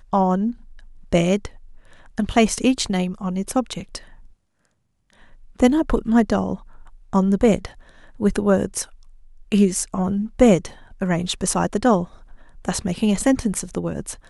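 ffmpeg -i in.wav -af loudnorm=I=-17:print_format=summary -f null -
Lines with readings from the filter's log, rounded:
Input Integrated:    -21.1 LUFS
Input True Peak:      -1.9 dBTP
Input LRA:             2.8 LU
Input Threshold:     -32.3 LUFS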